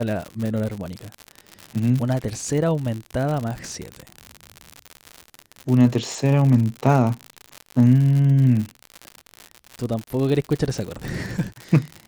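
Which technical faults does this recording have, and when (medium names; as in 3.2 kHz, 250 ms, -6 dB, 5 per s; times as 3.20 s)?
crackle 95 per s -25 dBFS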